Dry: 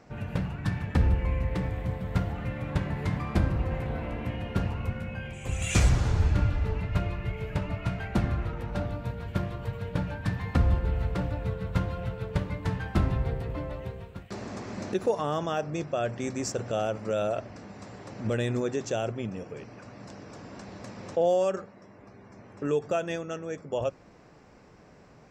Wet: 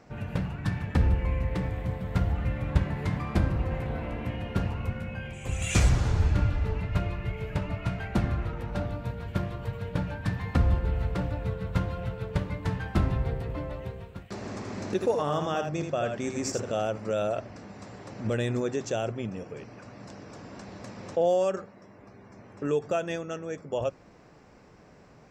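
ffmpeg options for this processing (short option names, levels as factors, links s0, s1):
-filter_complex "[0:a]asettb=1/sr,asplit=3[s0][s1][s2];[s0]atrim=end=2.204[s3];[s1]atrim=start=2.2:end=2.84,asetpts=PTS-STARTPTS,afade=t=in:d=0.004:c=qsin,afade=t=out:st=0.636:d=0.004:c=qsin,equalizer=f=60:w=1.5:g=11.5[s4];[s2]atrim=start=2.836[s5];[s3][s4]acrossfade=d=0.004:c1=hsin:c2=qsin[s6];[s6][s5]acrossfade=d=0.004:c1=qsin:c2=hsin,asettb=1/sr,asplit=3[s7][s8][s9];[s7]atrim=end=14.364[s10];[s8]atrim=start=14.36:end=16.77,asetpts=PTS-STARTPTS,afade=t=in:d=0.004:c=qsin,afade=t=out:st=2.406:d=0.004:c=qsin,aecho=1:1:80:0.501,atrim=end_sample=106281[s11];[s9]atrim=start=16.766[s12];[s10][s11]acrossfade=d=0.004:c1=hsin:c2=qsin[s13];[s13][s12]acrossfade=d=0.004:c1=qsin:c2=hsin"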